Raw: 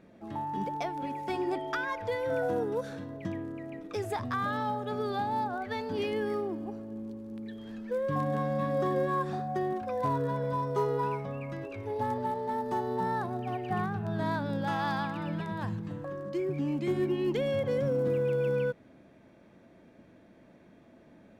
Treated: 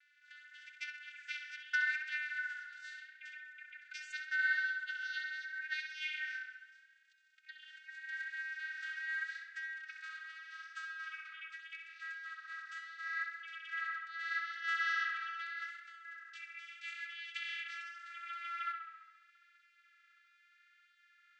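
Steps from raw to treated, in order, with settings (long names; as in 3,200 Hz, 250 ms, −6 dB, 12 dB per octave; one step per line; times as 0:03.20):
vocoder with a gliding carrier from D4, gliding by +3 semitones
linear-phase brick-wall high-pass 1,300 Hz
tape delay 66 ms, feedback 70%, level −5.5 dB, low-pass 3,700 Hz
level +9.5 dB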